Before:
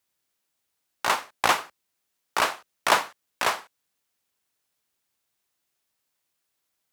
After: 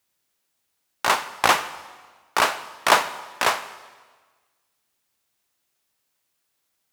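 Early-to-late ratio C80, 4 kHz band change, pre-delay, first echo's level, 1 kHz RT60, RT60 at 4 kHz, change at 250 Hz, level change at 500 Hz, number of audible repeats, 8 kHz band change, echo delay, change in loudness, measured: 15.5 dB, +3.5 dB, 7 ms, none, 1.4 s, 1.3 s, +3.5 dB, +4.0 dB, none, +3.5 dB, none, +3.5 dB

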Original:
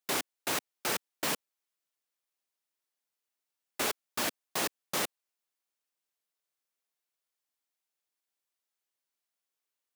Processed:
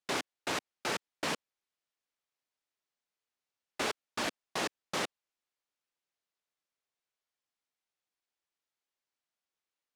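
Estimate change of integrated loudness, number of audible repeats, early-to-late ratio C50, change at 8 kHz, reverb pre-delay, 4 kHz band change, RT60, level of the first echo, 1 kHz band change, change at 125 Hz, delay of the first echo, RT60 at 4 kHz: -3.0 dB, none, none, -6.5 dB, none, -2.0 dB, none, none, -0.5 dB, 0.0 dB, none, none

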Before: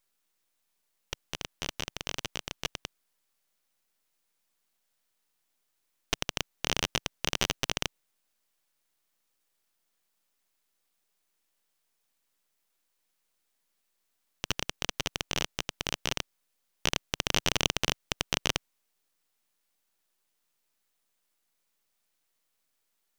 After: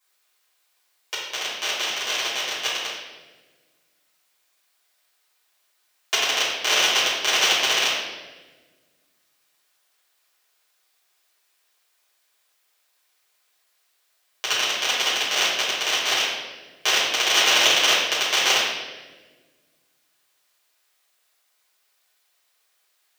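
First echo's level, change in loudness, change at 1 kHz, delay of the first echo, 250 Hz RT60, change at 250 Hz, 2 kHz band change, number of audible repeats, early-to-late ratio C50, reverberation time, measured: none, +12.0 dB, +12.0 dB, none, 2.1 s, -0.5 dB, +13.5 dB, none, 0.0 dB, 1.3 s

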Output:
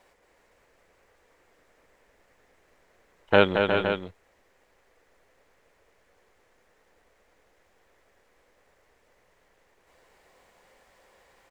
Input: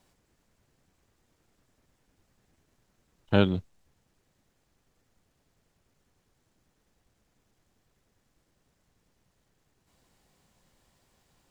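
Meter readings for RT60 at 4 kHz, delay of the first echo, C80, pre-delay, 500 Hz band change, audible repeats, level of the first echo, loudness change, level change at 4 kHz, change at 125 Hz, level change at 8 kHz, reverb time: none, 0.224 s, none, none, +8.5 dB, 3, -6.0 dB, +3.0 dB, +6.5 dB, -4.5 dB, n/a, none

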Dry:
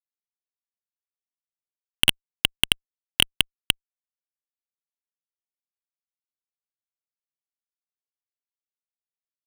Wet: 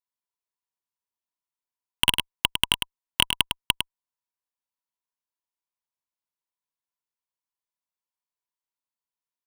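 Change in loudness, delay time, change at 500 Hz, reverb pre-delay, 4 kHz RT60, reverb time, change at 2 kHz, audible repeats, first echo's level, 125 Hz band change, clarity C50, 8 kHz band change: -1.0 dB, 0.104 s, -1.0 dB, none, none, none, -1.0 dB, 1, -6.5 dB, -1.0 dB, none, -1.0 dB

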